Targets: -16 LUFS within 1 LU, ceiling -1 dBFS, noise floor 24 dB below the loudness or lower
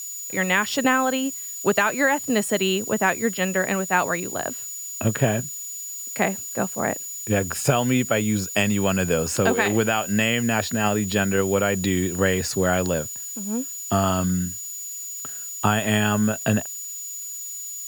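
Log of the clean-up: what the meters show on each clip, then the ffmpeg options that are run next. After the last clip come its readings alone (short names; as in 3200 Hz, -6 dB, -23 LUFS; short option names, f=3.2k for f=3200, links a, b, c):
steady tone 6900 Hz; tone level -32 dBFS; noise floor -34 dBFS; noise floor target -47 dBFS; loudness -23.0 LUFS; peak -4.0 dBFS; loudness target -16.0 LUFS
-> -af "bandreject=f=6.9k:w=30"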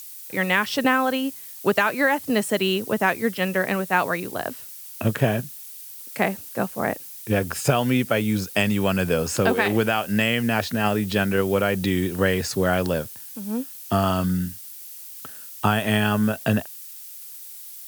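steady tone none; noise floor -40 dBFS; noise floor target -47 dBFS
-> -af "afftdn=nr=7:nf=-40"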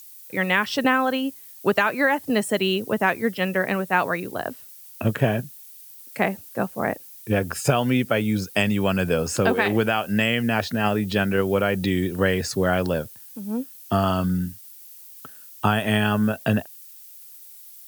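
noise floor -45 dBFS; noise floor target -47 dBFS
-> -af "afftdn=nr=6:nf=-45"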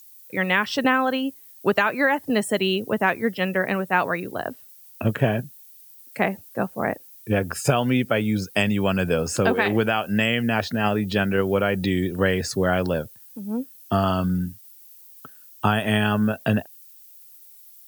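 noise floor -48 dBFS; loudness -23.0 LUFS; peak -4.5 dBFS; loudness target -16.0 LUFS
-> -af "volume=7dB,alimiter=limit=-1dB:level=0:latency=1"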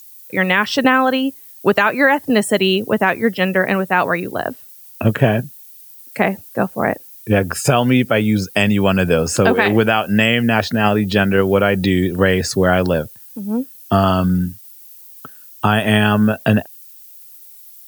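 loudness -16.5 LUFS; peak -1.0 dBFS; noise floor -41 dBFS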